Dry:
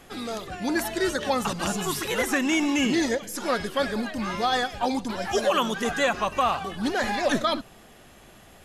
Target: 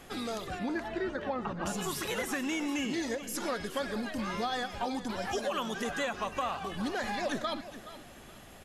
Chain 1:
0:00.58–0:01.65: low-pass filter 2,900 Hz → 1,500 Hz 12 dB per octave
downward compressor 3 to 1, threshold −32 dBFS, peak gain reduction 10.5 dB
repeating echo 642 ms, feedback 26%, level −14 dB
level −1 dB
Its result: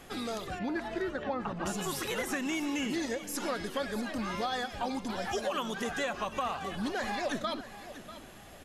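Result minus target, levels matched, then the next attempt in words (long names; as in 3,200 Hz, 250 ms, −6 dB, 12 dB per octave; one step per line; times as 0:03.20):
echo 220 ms late
0:00.58–0:01.65: low-pass filter 2,900 Hz → 1,500 Hz 12 dB per octave
downward compressor 3 to 1, threshold −32 dBFS, peak gain reduction 10.5 dB
repeating echo 422 ms, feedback 26%, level −14 dB
level −1 dB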